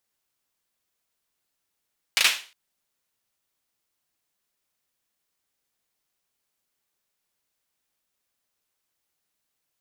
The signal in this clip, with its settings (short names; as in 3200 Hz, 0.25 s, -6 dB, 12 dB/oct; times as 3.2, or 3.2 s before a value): hand clap length 0.36 s, bursts 3, apart 37 ms, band 2700 Hz, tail 0.36 s